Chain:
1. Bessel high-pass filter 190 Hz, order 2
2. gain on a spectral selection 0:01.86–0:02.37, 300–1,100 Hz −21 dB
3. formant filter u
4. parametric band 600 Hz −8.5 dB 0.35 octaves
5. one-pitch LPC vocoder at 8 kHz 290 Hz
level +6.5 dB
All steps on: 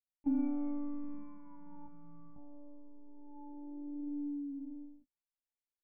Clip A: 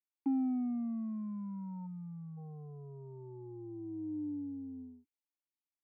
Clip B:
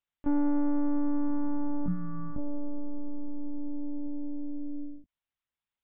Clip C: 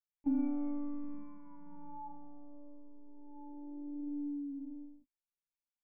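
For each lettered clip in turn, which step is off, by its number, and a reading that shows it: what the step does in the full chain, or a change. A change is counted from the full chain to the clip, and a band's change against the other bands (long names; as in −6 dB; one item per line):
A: 5, 125 Hz band +14.5 dB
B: 3, 125 Hz band +7.5 dB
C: 2, 1 kHz band +4.5 dB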